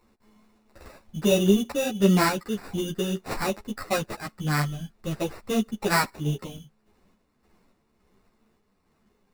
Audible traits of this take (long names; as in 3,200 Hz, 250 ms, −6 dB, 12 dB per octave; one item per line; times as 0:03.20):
aliases and images of a low sample rate 3,200 Hz, jitter 0%
sample-and-hold tremolo
a shimmering, thickened sound